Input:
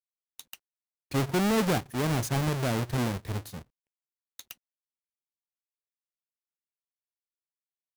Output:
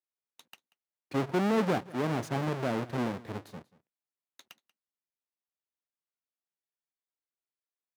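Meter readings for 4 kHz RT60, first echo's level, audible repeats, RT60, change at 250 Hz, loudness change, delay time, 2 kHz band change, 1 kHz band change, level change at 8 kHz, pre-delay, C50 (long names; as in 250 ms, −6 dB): no reverb audible, −21.0 dB, 1, no reverb audible, −2.0 dB, −3.0 dB, 186 ms, −3.5 dB, −1.0 dB, −12.5 dB, no reverb audible, no reverb audible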